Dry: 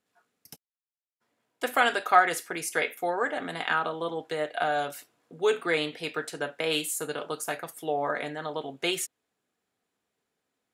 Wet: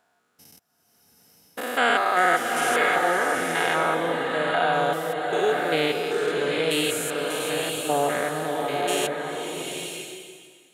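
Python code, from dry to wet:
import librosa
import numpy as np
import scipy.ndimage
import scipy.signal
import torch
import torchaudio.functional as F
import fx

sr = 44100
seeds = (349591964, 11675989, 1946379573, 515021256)

y = fx.spec_steps(x, sr, hold_ms=200)
y = fx.rev_bloom(y, sr, seeds[0], attack_ms=940, drr_db=1.5)
y = y * 10.0 ** (7.0 / 20.0)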